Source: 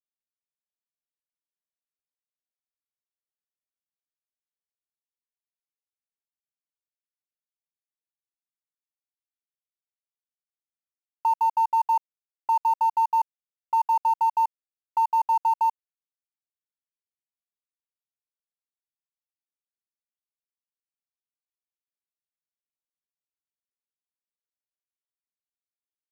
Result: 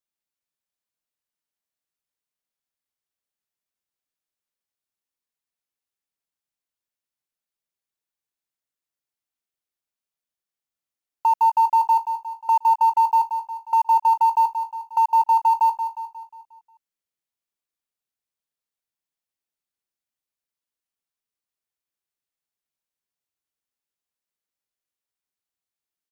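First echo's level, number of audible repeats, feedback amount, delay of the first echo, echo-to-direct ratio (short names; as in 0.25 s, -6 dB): -9.0 dB, 5, 50%, 0.179 s, -8.0 dB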